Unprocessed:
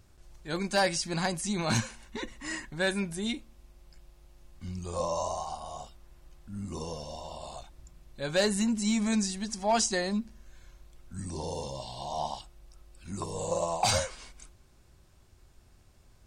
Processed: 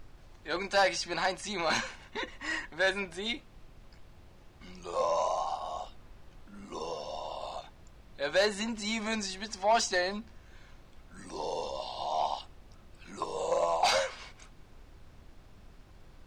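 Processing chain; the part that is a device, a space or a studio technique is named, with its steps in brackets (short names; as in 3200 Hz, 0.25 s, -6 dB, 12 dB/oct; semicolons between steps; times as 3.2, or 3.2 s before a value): aircraft cabin announcement (BPF 470–4100 Hz; soft clip -22.5 dBFS, distortion -15 dB; brown noise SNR 17 dB); gain +4.5 dB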